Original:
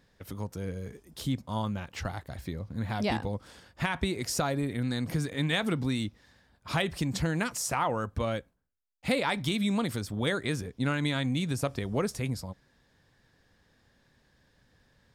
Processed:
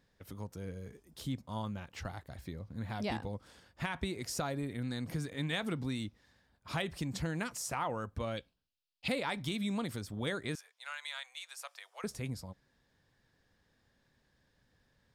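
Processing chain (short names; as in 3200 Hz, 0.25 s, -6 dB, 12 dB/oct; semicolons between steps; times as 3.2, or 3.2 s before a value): 8.37–9.08 band shelf 3600 Hz +14 dB 1.3 oct; 10.55–12.04 Bessel high-pass 1200 Hz, order 8; gain -7 dB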